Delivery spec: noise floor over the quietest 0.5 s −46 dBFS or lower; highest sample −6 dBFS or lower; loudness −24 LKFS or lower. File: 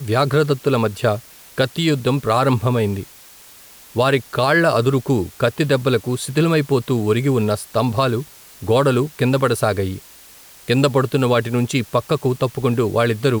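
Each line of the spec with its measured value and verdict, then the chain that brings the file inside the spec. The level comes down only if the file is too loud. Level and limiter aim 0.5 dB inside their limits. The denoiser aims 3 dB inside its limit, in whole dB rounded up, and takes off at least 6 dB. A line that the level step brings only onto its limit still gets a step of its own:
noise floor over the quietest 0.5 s −44 dBFS: out of spec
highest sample −5.0 dBFS: out of spec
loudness −18.5 LKFS: out of spec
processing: level −6 dB

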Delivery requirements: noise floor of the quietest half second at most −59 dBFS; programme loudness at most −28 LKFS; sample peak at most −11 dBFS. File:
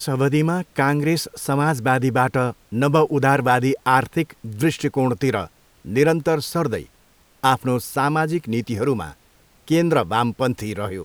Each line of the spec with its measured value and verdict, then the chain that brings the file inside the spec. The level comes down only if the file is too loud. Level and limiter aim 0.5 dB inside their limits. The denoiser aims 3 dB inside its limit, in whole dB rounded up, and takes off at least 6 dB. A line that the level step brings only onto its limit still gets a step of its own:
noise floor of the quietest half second −56 dBFS: out of spec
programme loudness −20.5 LKFS: out of spec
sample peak −2.5 dBFS: out of spec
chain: level −8 dB
brickwall limiter −11.5 dBFS

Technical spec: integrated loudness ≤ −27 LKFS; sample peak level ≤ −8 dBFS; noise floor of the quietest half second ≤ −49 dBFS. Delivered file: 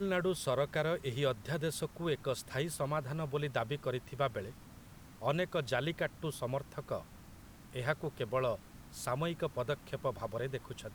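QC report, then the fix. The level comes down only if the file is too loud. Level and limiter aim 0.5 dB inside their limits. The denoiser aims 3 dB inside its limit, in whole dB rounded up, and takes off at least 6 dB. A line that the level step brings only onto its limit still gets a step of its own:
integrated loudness −37.0 LKFS: in spec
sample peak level −17.5 dBFS: in spec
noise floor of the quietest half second −54 dBFS: in spec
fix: no processing needed

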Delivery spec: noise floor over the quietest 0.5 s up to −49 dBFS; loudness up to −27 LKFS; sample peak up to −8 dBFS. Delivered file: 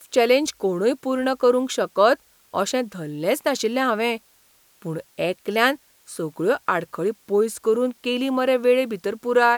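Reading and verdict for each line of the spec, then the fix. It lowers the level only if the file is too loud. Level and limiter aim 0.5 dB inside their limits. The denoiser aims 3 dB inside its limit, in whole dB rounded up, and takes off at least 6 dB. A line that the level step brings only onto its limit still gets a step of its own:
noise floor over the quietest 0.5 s −58 dBFS: in spec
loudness −22.5 LKFS: out of spec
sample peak −4.5 dBFS: out of spec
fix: level −5 dB

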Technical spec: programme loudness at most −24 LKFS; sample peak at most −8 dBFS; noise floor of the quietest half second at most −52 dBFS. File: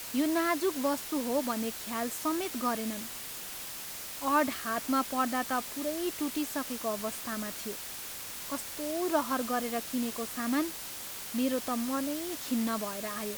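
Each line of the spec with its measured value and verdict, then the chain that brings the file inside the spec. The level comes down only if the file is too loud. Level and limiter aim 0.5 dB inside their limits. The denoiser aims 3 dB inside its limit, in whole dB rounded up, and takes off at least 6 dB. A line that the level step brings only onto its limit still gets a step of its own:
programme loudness −32.5 LKFS: in spec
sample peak −15.0 dBFS: in spec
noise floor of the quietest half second −41 dBFS: out of spec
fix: broadband denoise 14 dB, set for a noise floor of −41 dBFS

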